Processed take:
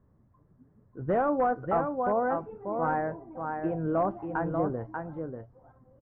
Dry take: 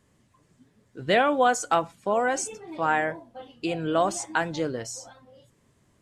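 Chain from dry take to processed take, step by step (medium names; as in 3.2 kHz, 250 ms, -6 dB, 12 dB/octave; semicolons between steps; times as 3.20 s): bass shelf 140 Hz +10.5 dB; delay 589 ms -6 dB; in parallel at -6.5 dB: integer overflow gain 13.5 dB; on the sum: inverse Chebyshev low-pass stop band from 7.3 kHz, stop band 80 dB; trim -7 dB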